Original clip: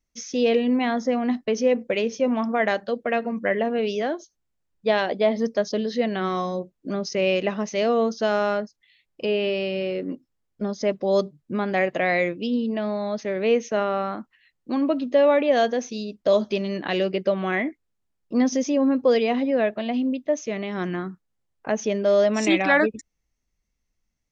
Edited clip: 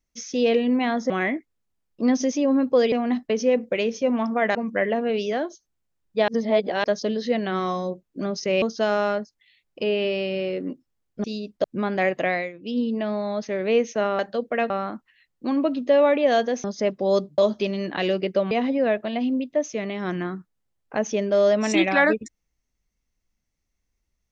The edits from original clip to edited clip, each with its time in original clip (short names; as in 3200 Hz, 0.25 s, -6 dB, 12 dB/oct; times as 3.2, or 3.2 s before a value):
2.73–3.24 move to 13.95
4.97–5.53 reverse
7.31–8.04 cut
10.66–11.4 swap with 15.89–16.29
12.02–12.55 dip -16.5 dB, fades 0.26 s
17.42–19.24 move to 1.1